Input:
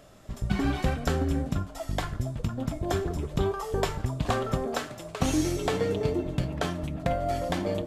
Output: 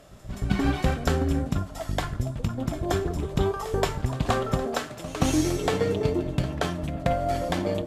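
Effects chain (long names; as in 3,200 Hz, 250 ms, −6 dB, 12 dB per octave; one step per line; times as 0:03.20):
echo ahead of the sound 175 ms −14.5 dB
harmonic generator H 7 −33 dB, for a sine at −10.5 dBFS
level +3 dB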